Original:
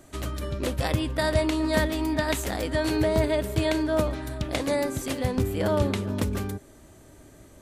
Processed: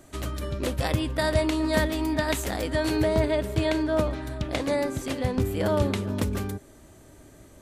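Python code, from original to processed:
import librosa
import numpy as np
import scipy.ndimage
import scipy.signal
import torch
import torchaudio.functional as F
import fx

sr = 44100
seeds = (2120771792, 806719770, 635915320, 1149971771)

y = fx.high_shelf(x, sr, hz=7900.0, db=-8.0, at=(3.14, 5.42))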